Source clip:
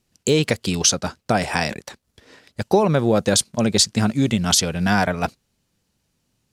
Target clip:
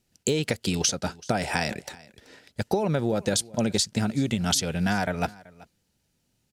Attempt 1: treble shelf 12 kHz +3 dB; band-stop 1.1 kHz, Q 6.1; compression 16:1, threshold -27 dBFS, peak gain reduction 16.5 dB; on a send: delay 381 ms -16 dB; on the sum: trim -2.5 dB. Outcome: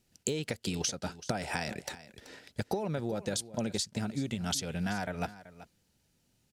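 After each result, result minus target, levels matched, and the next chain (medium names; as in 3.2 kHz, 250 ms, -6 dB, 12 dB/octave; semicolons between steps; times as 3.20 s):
compression: peak gain reduction +9 dB; echo-to-direct +6 dB
treble shelf 12 kHz +3 dB; band-stop 1.1 kHz, Q 6.1; compression 16:1, threshold -17.5 dBFS, peak gain reduction 8 dB; on a send: delay 381 ms -16 dB; on the sum: trim -2.5 dB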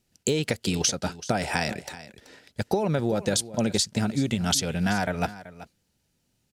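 echo-to-direct +6 dB
treble shelf 12 kHz +3 dB; band-stop 1.1 kHz, Q 6.1; compression 16:1, threshold -17.5 dBFS, peak gain reduction 8 dB; on a send: delay 381 ms -22 dB; on the sum: trim -2.5 dB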